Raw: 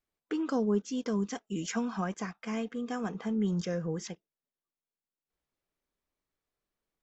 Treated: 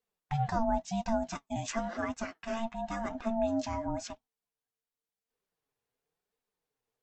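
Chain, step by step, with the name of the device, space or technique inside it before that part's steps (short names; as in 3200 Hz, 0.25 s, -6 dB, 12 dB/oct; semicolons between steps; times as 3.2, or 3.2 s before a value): alien voice (ring modulator 450 Hz; flange 0.94 Hz, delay 3.8 ms, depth 5.1 ms, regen +45%); gain +6 dB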